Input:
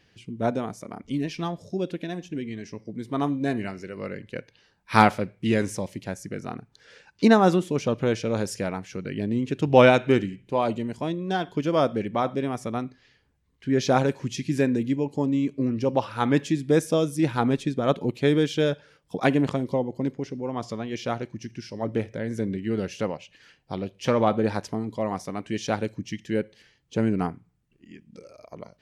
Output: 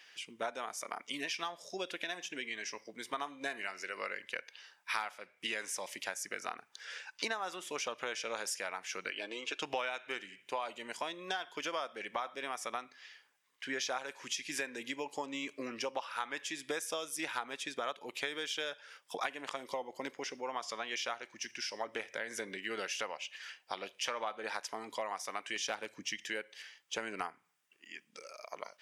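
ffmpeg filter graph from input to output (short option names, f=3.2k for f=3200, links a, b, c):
-filter_complex "[0:a]asettb=1/sr,asplit=3[a][b][c];[a]atrim=end=9.114[d];[b]atrim=start=9.11:end=9.62,asetpts=PTS-STARTPTS,afade=t=in:d=0.004:c=qsin,afade=t=out:st=0.506:d=0.004:c=qsin,highpass=350,lowpass=6.7k,bandreject=f=1.9k:w=5.2,aecho=1:1:6.3:0.49,atrim=end_sample=22491[e];[c]atrim=start=9.616[f];[d][e]acrossfade=d=0.004:c1=hsin:c2=qsin[g];[g][f]acrossfade=d=0.004:c1=qsin:c2=hsin,asettb=1/sr,asplit=3[h][i][j];[h]atrim=end=25.564[k];[i]atrim=start=25.56:end=26.28,asetpts=PTS-STARTPTS,afade=t=in:d=0.004:c=qsin,afade=t=out:st=0.716:d=0.004:c=qsin,lowshelf=f=430:g=7.5,volume=14dB,asoftclip=hard,volume=-14dB[l];[j]atrim=start=26.276[m];[k][l]acrossfade=d=0.004:c1=hsin:c2=qsin[n];[n][m]acrossfade=d=0.004:c1=qsin:c2=hsin,highpass=1.1k,bandreject=f=4.2k:w=11,acompressor=threshold=-42dB:ratio=8,volume=7.5dB"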